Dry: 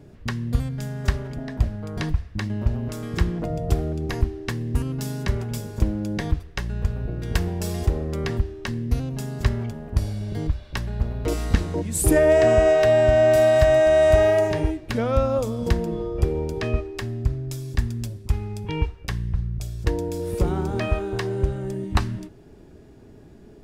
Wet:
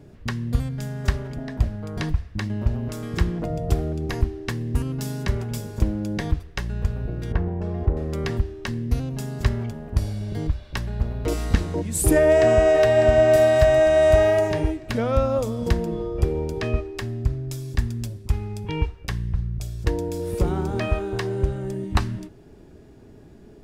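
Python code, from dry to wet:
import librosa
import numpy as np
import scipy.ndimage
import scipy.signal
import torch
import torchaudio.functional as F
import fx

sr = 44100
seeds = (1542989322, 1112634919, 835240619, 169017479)

y = fx.lowpass(x, sr, hz=1300.0, slope=12, at=(7.32, 7.97))
y = fx.echo_throw(y, sr, start_s=12.14, length_s=0.62, ms=600, feedback_pct=50, wet_db=-10.0)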